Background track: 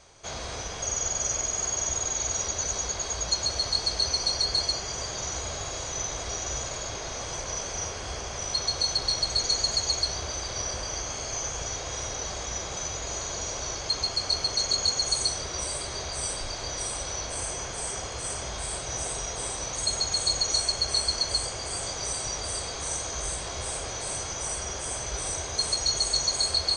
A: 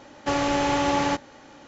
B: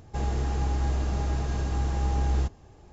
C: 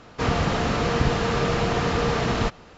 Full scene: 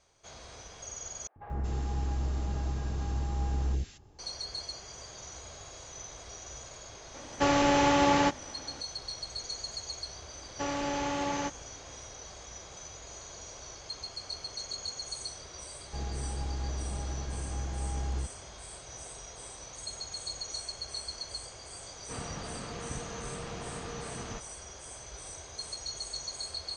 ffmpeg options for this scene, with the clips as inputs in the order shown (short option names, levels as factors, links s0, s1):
-filter_complex "[2:a]asplit=2[s0][s1];[1:a]asplit=2[s2][s3];[0:a]volume=0.224[s4];[s0]acrossover=split=580|1900[s5][s6][s7];[s5]adelay=90[s8];[s7]adelay=230[s9];[s8][s6][s9]amix=inputs=3:normalize=0[s10];[s4]asplit=2[s11][s12];[s11]atrim=end=1.274[s13];[s10]atrim=end=2.92,asetpts=PTS-STARTPTS,volume=0.562[s14];[s12]atrim=start=4.186[s15];[s2]atrim=end=1.67,asetpts=PTS-STARTPTS,volume=0.891,afade=t=in:d=0.004:c=hsin,afade=t=out:st=1.666:d=0.004:c=hsin,adelay=314874S[s16];[s3]atrim=end=1.67,asetpts=PTS-STARTPTS,volume=0.335,afade=t=in:d=0.004:c=hsin,afade=t=out:st=1.666:d=0.004:c=hsin,adelay=10330[s17];[s1]atrim=end=2.92,asetpts=PTS-STARTPTS,volume=0.376,afade=t=in:d=0.004:c=hsin,afade=t=out:st=2.916:d=0.004:c=hsin,adelay=15790[s18];[3:a]atrim=end=2.77,asetpts=PTS-STARTPTS,volume=0.126,afade=t=in:d=0.004:c=hsin,afade=t=out:st=2.766:d=0.004:c=hsin,adelay=21900[s19];[s13][s14]acrossfade=d=0.004:c1=hsin:c2=hsin[s20];[s20][s15]acrossfade=d=0.004:c1=hsin:c2=hsin[s21];[s21][s16][s17][s18][s19]amix=inputs=5:normalize=0"